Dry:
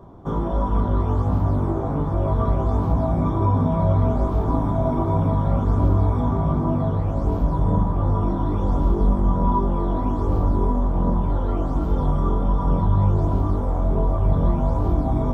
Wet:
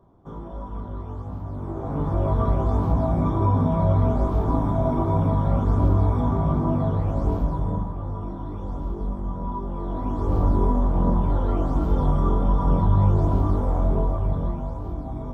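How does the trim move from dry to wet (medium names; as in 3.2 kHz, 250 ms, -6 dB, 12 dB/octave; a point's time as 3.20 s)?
1.49 s -12.5 dB
2.07 s -1 dB
7.29 s -1 dB
8.03 s -10 dB
9.59 s -10 dB
10.44 s 0 dB
13.85 s 0 dB
14.79 s -10.5 dB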